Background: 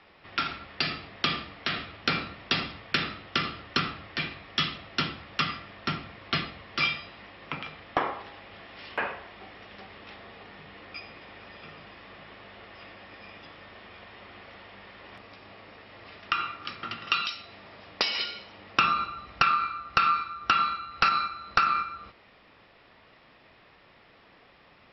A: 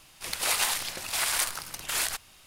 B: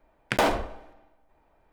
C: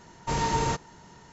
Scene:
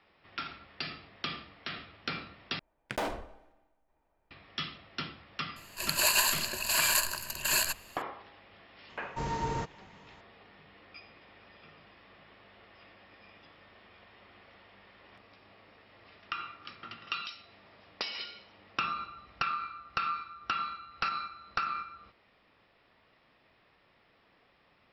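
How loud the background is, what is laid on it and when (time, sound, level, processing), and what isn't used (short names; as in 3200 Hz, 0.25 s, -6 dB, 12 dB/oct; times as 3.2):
background -9.5 dB
2.59 replace with B -11 dB
5.56 add A -2 dB + ripple EQ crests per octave 1.4, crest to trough 15 dB
8.89 add C -6.5 dB + LPF 2700 Hz 6 dB/oct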